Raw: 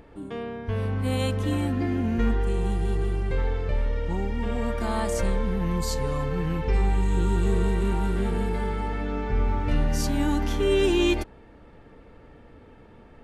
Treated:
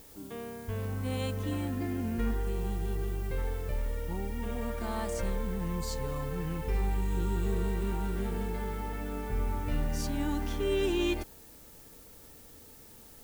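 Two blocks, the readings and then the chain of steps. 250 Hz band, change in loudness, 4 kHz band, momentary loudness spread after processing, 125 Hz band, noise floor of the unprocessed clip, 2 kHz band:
-7.5 dB, -7.5 dB, -7.5 dB, 19 LU, -7.5 dB, -50 dBFS, -7.5 dB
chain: added noise blue -47 dBFS; gain -7.5 dB

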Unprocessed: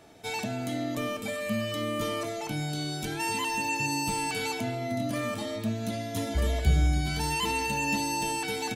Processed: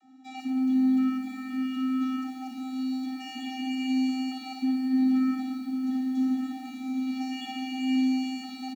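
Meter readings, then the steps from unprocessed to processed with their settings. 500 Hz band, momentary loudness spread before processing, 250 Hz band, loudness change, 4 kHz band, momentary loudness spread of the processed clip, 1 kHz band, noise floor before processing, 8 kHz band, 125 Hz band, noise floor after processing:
under -25 dB, 6 LU, +8.5 dB, +1.0 dB, -5.5 dB, 11 LU, -8.0 dB, -36 dBFS, under -15 dB, under -25 dB, -42 dBFS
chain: vocoder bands 32, square 260 Hz; on a send: tapped delay 57/621 ms -5.5/-14 dB; on the sum: lo-fi delay 0.112 s, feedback 80%, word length 9-bit, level -9.5 dB

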